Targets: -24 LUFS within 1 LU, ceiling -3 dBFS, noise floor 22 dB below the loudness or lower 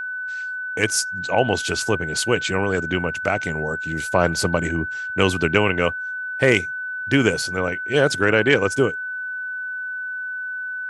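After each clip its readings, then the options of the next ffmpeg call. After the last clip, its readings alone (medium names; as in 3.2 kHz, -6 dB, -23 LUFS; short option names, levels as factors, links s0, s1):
steady tone 1.5 kHz; tone level -26 dBFS; loudness -21.5 LUFS; peak level -1.5 dBFS; loudness target -24.0 LUFS
-> -af "bandreject=f=1500:w=30"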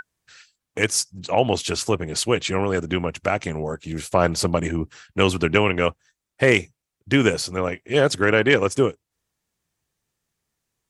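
steady tone not found; loudness -21.5 LUFS; peak level -2.0 dBFS; loudness target -24.0 LUFS
-> -af "volume=0.75"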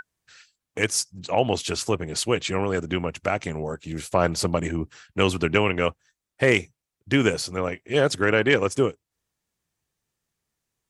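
loudness -24.0 LUFS; peak level -4.5 dBFS; noise floor -86 dBFS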